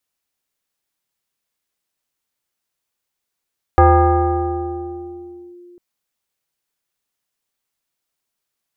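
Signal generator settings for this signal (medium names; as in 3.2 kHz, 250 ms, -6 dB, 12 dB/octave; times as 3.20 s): FM tone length 2.00 s, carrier 352 Hz, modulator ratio 1.23, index 1.8, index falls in 1.78 s linear, decay 3.32 s, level -5.5 dB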